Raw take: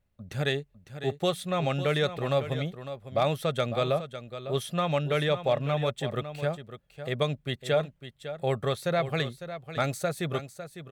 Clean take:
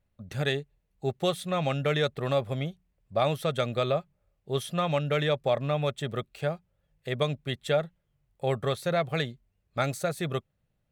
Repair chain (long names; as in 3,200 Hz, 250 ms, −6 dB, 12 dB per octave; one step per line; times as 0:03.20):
clipped peaks rebuilt −14.5 dBFS
echo removal 553 ms −11.5 dB